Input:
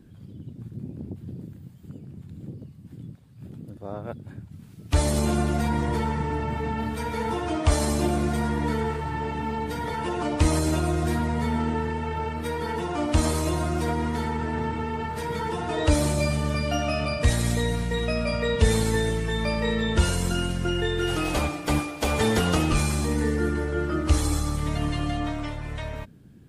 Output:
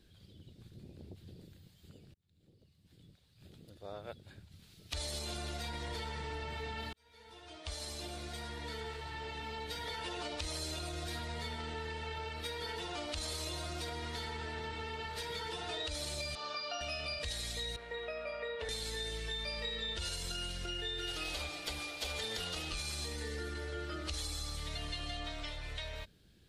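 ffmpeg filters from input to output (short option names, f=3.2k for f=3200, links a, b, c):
-filter_complex "[0:a]asettb=1/sr,asplit=3[a][b][c];[a]atrim=end=16.354[d];[b]atrim=start=16.35:end=16.81,asetpts=PTS-STARTPTS,afade=t=in:d=0.004:c=qsin,afade=t=out:st=0.456:d=0.004:c=qsin,highpass=430,equalizer=f=530:t=q:w=4:g=-4,equalizer=f=810:t=q:w=4:g=5,equalizer=f=1.2k:t=q:w=4:g=7,equalizer=f=2k:t=q:w=4:g=-10,equalizer=f=3.2k:t=q:w=4:g=-6,lowpass=f=5.2k:w=0.5412,lowpass=f=5.2k:w=1.3066[e];[c]atrim=start=16.806[f];[d][e]acrossfade=d=0.004:c1=hsin:c2=qsin[g];[g][f]acrossfade=d=0.004:c1=qsin:c2=hsin,asettb=1/sr,asplit=3[h][i][j];[h]atrim=end=17.764[k];[i]atrim=start=17.76:end=18.69,asetpts=PTS-STARTPTS,afade=t=in:d=0.004:c=qsin,afade=t=out:st=0.926:d=0.004:c=qsin,acrossover=split=320 2100:gain=0.126 1 0.0708[l][m][n];[l][m][n]amix=inputs=3:normalize=0[o];[j]atrim=start=18.686[p];[k][o]acrossfade=d=0.004:c1=hsin:c2=qsin[q];[q][p]acrossfade=d=0.004:c1=qsin:c2=hsin,asplit=3[r][s][t];[r]atrim=end=2.14,asetpts=PTS-STARTPTS,afade=t=out:st=2.136:d=0.004:c=hsin[u];[s]atrim=start=2.14:end=6.93,asetpts=PTS-STARTPTS,afade=t=in:d=1.46,afade=t=out:st=4.786:d=0.004:c=hsin[v];[t]atrim=start=6.93,asetpts=PTS-STARTPTS,afade=t=in:d=3.2[w];[u][v][w]concat=n=3:v=0:a=1,alimiter=limit=-17.5dB:level=0:latency=1:release=35,equalizer=f=125:t=o:w=1:g=-11,equalizer=f=250:t=o:w=1:g=-12,equalizer=f=1k:t=o:w=1:g=-6,equalizer=f=4k:t=o:w=1:g=12,acompressor=threshold=-33dB:ratio=3,volume=-5dB"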